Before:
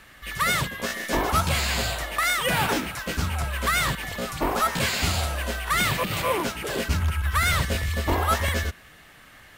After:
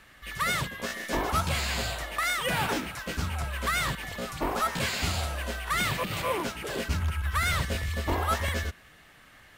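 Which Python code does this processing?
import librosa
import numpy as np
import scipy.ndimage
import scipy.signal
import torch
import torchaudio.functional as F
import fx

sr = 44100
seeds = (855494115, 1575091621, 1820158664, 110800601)

y = fx.high_shelf(x, sr, hz=11000.0, db=-4.0)
y = y * 10.0 ** (-4.5 / 20.0)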